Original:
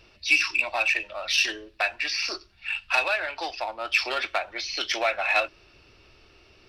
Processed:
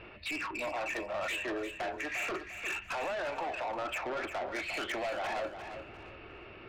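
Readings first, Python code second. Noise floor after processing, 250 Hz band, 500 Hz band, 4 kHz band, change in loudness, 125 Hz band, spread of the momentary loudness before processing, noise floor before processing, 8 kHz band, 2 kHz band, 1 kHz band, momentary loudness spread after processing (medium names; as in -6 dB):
-50 dBFS, +2.0 dB, -3.5 dB, -15.0 dB, -10.5 dB, no reading, 10 LU, -57 dBFS, -12.5 dB, -12.0 dB, -6.0 dB, 10 LU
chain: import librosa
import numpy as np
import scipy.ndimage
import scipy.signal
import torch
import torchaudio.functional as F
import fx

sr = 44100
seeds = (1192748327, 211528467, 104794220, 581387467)

p1 = scipy.signal.sosfilt(scipy.signal.butter(4, 2500.0, 'lowpass', fs=sr, output='sos'), x)
p2 = fx.env_lowpass_down(p1, sr, base_hz=930.0, full_db=-27.0)
p3 = fx.low_shelf(p2, sr, hz=74.0, db=-11.5)
p4 = fx.over_compress(p3, sr, threshold_db=-37.0, ratio=-0.5)
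p5 = p3 + F.gain(torch.from_numpy(p4), 1.0).numpy()
p6 = 10.0 ** (-32.5 / 20.0) * np.tanh(p5 / 10.0 ** (-32.5 / 20.0))
y = p6 + fx.echo_feedback(p6, sr, ms=350, feedback_pct=30, wet_db=-9.5, dry=0)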